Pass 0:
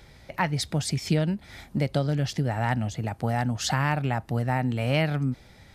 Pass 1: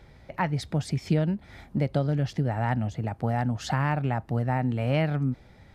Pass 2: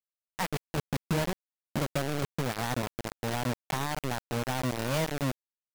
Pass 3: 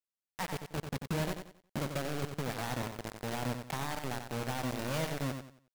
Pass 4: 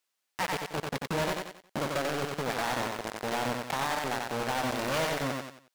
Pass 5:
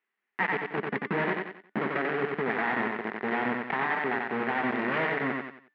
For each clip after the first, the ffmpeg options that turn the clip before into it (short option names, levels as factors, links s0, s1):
-af "highshelf=f=2800:g=-12"
-af "acrusher=bits=3:mix=0:aa=0.000001,volume=0.501"
-af "aecho=1:1:91|182|273|364:0.447|0.138|0.0429|0.0133,volume=0.531"
-filter_complex "[0:a]asplit=2[s0][s1];[s1]highpass=f=720:p=1,volume=12.6,asoftclip=type=tanh:threshold=0.0944[s2];[s0][s2]amix=inputs=2:normalize=0,lowpass=f=7000:p=1,volume=0.501"
-af "highpass=180,equalizer=f=210:t=q:w=4:g=9,equalizer=f=400:t=q:w=4:g=8,equalizer=f=560:t=q:w=4:g=-8,equalizer=f=1900:t=q:w=4:g=9,lowpass=f=2500:w=0.5412,lowpass=f=2500:w=1.3066,bandreject=f=294.8:t=h:w=4,bandreject=f=589.6:t=h:w=4,bandreject=f=884.4:t=h:w=4,bandreject=f=1179.2:t=h:w=4,bandreject=f=1474:t=h:w=4,bandreject=f=1768.8:t=h:w=4,bandreject=f=2063.6:t=h:w=4,bandreject=f=2358.4:t=h:w=4,bandreject=f=2653.2:t=h:w=4,bandreject=f=2948:t=h:w=4,bandreject=f=3242.8:t=h:w=4,bandreject=f=3537.6:t=h:w=4,bandreject=f=3832.4:t=h:w=4,bandreject=f=4127.2:t=h:w=4,bandreject=f=4422:t=h:w=4,bandreject=f=4716.8:t=h:w=4,bandreject=f=5011.6:t=h:w=4,bandreject=f=5306.4:t=h:w=4,bandreject=f=5601.2:t=h:w=4,bandreject=f=5896:t=h:w=4,bandreject=f=6190.8:t=h:w=4,bandreject=f=6485.6:t=h:w=4,bandreject=f=6780.4:t=h:w=4,bandreject=f=7075.2:t=h:w=4,bandreject=f=7370:t=h:w=4,bandreject=f=7664.8:t=h:w=4,bandreject=f=7959.6:t=h:w=4,bandreject=f=8254.4:t=h:w=4,bandreject=f=8549.2:t=h:w=4,bandreject=f=8844:t=h:w=4,bandreject=f=9138.8:t=h:w=4,bandreject=f=9433.6:t=h:w=4,bandreject=f=9728.4:t=h:w=4,bandreject=f=10023.2:t=h:w=4,bandreject=f=10318:t=h:w=4,bandreject=f=10612.8:t=h:w=4,bandreject=f=10907.6:t=h:w=4,bandreject=f=11202.4:t=h:w=4,bandreject=f=11497.2:t=h:w=4,bandreject=f=11792:t=h:w=4,volume=1.19"